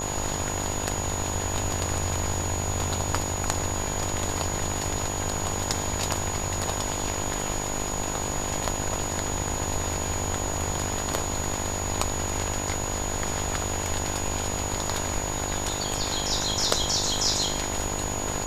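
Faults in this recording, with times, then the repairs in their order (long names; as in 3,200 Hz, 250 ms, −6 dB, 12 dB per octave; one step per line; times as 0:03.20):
mains buzz 50 Hz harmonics 21 −33 dBFS
whistle 6,800 Hz −32 dBFS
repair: hum removal 50 Hz, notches 21
notch filter 6,800 Hz, Q 30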